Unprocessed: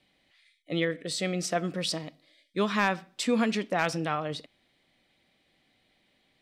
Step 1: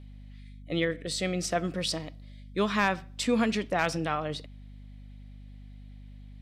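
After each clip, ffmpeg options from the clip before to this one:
-af "aeval=exprs='val(0)+0.00562*(sin(2*PI*50*n/s)+sin(2*PI*2*50*n/s)/2+sin(2*PI*3*50*n/s)/3+sin(2*PI*4*50*n/s)/4+sin(2*PI*5*50*n/s)/5)':c=same"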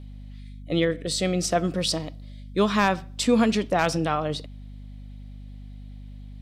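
-af "equalizer=f=2000:w=1.4:g=-5.5,volume=2"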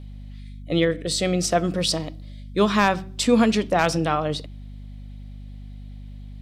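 -af "bandreject=f=63.24:t=h:w=4,bandreject=f=126.48:t=h:w=4,bandreject=f=189.72:t=h:w=4,bandreject=f=252.96:t=h:w=4,bandreject=f=316.2:t=h:w=4,bandreject=f=379.44:t=h:w=4,volume=1.33"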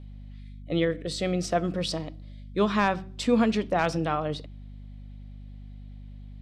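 -af "highshelf=f=5800:g=-12,volume=0.596"

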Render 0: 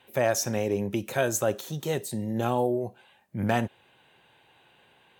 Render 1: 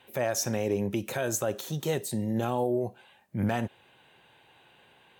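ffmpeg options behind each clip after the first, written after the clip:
-af "alimiter=limit=0.119:level=0:latency=1:release=128,volume=1.12"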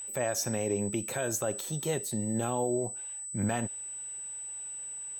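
-af "aeval=exprs='val(0)+0.0178*sin(2*PI*8000*n/s)':c=same,volume=0.75"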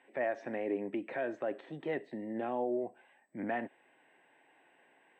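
-af "highpass=f=190:w=0.5412,highpass=f=190:w=1.3066,equalizer=f=200:t=q:w=4:g=-6,equalizer=f=290:t=q:w=4:g=8,equalizer=f=670:t=q:w=4:g=5,equalizer=f=1300:t=q:w=4:g=-4,equalizer=f=1900:t=q:w=4:g=9,lowpass=f=2500:w=0.5412,lowpass=f=2500:w=1.3066,volume=0.562"

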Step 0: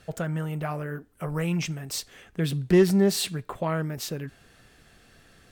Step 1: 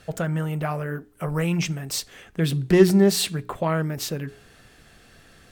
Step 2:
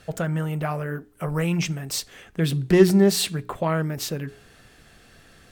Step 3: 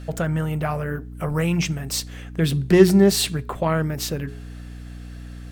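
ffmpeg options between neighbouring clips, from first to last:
-af "bandreject=f=59.92:t=h:w=4,bandreject=f=119.84:t=h:w=4,bandreject=f=179.76:t=h:w=4,bandreject=f=239.68:t=h:w=4,bandreject=f=299.6:t=h:w=4,bandreject=f=359.52:t=h:w=4,bandreject=f=419.44:t=h:w=4,volume=1.58"
-af anull
-af "aeval=exprs='val(0)+0.0141*(sin(2*PI*60*n/s)+sin(2*PI*2*60*n/s)/2+sin(2*PI*3*60*n/s)/3+sin(2*PI*4*60*n/s)/4+sin(2*PI*5*60*n/s)/5)':c=same,volume=1.26"

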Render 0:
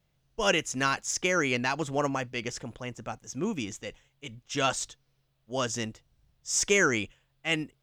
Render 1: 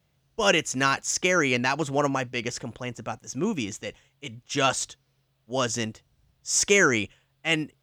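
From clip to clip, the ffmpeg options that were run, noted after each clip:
-af "highpass=52,volume=1.58"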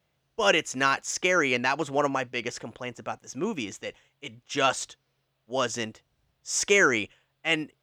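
-af "bass=f=250:g=-8,treble=f=4000:g=-5"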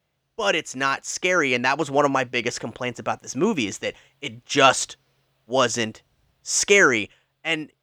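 -af "dynaudnorm=f=380:g=7:m=3.76"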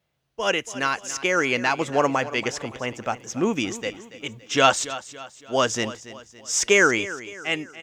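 -af "aecho=1:1:282|564|846|1128:0.168|0.0755|0.034|0.0153,volume=0.841"

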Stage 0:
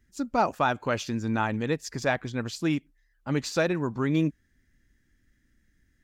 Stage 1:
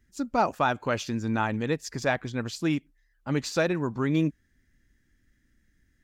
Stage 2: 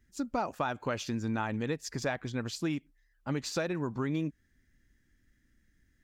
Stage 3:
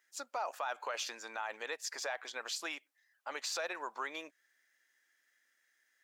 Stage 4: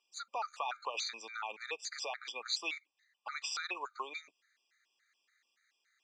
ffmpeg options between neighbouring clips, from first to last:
-af anull
-af "acompressor=threshold=0.0501:ratio=6,volume=0.794"
-af "highpass=f=610:w=0.5412,highpass=f=610:w=1.3066,alimiter=level_in=2.24:limit=0.0631:level=0:latency=1:release=19,volume=0.447,volume=1.41"
-af "highpass=f=180:w=0.5412,highpass=f=180:w=1.3066,equalizer=f=280:t=q:w=4:g=-8,equalizer=f=600:t=q:w=4:g=-7,equalizer=f=1200:t=q:w=4:g=5,equalizer=f=1700:t=q:w=4:g=-6,equalizer=f=2600:t=q:w=4:g=7,equalizer=f=4100:t=q:w=4:g=7,lowpass=f=7400:w=0.5412,lowpass=f=7400:w=1.3066,afftfilt=real='re*gt(sin(2*PI*3.5*pts/sr)*(1-2*mod(floor(b*sr/1024/1200),2)),0)':imag='im*gt(sin(2*PI*3.5*pts/sr)*(1-2*mod(floor(b*sr/1024/1200),2)),0)':win_size=1024:overlap=0.75,volume=1.26"

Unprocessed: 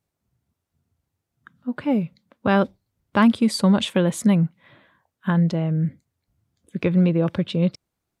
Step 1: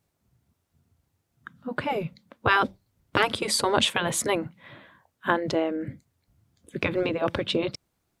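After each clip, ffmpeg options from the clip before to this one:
-af "afftfilt=real='re*lt(hypot(re,im),0.447)':imag='im*lt(hypot(re,im),0.447)':win_size=1024:overlap=0.75,volume=1.78"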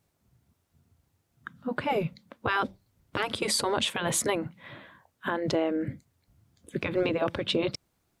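-af "alimiter=limit=0.133:level=0:latency=1:release=187,volume=1.19"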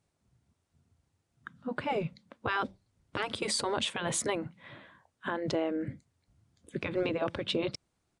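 -af "aresample=22050,aresample=44100,volume=0.631"

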